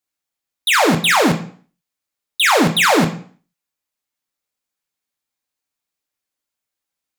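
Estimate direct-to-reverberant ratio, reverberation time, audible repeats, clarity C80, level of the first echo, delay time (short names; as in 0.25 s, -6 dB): 2.5 dB, 0.45 s, none, 15.0 dB, none, none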